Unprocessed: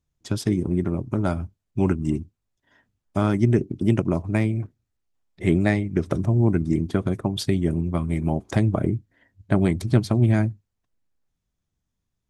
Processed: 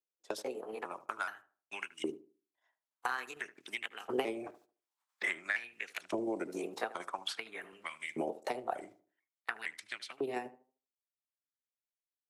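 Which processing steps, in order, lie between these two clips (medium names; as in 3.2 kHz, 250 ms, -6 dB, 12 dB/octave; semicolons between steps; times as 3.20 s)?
pitch shift switched off and on +3 st, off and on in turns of 440 ms; Doppler pass-by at 5.02 s, 12 m/s, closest 3.3 m; gate -55 dBFS, range -28 dB; Bessel high-pass 180 Hz, order 2; compression 5:1, threshold -40 dBFS, peak gain reduction 18 dB; LFO high-pass saw up 0.49 Hz 400–2900 Hz; tremolo saw down 11 Hz, depth 45%; tape echo 76 ms, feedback 27%, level -14.5 dB, low-pass 1.2 kHz; three bands compressed up and down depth 70%; trim +15.5 dB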